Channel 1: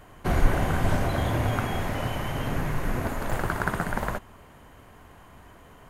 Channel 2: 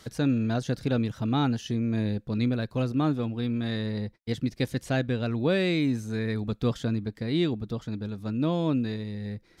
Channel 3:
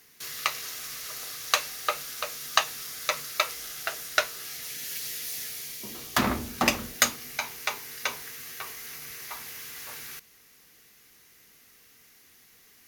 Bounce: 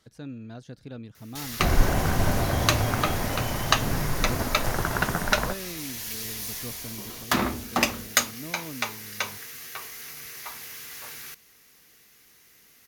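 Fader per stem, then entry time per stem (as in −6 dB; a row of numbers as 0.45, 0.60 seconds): +0.5, −14.0, +0.5 decibels; 1.35, 0.00, 1.15 seconds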